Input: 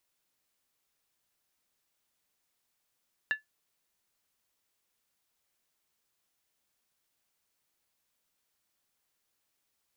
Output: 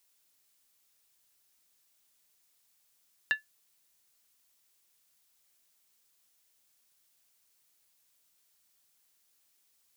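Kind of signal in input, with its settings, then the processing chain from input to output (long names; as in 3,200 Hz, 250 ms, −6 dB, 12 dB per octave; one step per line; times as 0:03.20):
struck skin, lowest mode 1,730 Hz, decay 0.14 s, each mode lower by 10.5 dB, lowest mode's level −21 dB
high-shelf EQ 3,000 Hz +10 dB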